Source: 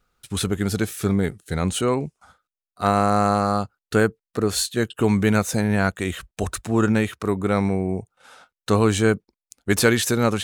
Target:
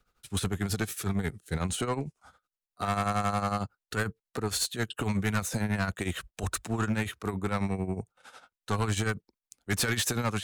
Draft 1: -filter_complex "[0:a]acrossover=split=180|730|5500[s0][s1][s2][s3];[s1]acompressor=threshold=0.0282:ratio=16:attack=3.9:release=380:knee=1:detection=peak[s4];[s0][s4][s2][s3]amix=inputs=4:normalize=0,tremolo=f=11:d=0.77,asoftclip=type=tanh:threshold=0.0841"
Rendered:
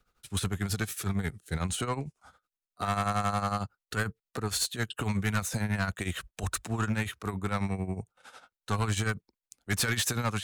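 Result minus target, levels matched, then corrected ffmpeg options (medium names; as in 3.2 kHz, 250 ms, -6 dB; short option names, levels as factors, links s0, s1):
compression: peak gain reduction +6 dB
-filter_complex "[0:a]acrossover=split=180|730|5500[s0][s1][s2][s3];[s1]acompressor=threshold=0.0596:ratio=16:attack=3.9:release=380:knee=1:detection=peak[s4];[s0][s4][s2][s3]amix=inputs=4:normalize=0,tremolo=f=11:d=0.77,asoftclip=type=tanh:threshold=0.0841"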